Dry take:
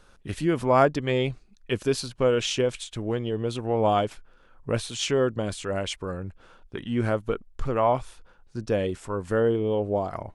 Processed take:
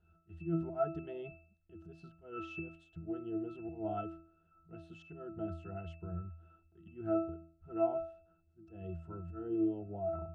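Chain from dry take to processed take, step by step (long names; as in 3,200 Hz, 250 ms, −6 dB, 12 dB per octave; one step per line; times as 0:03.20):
volume swells 210 ms
resonances in every octave E, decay 0.48 s
level +7.5 dB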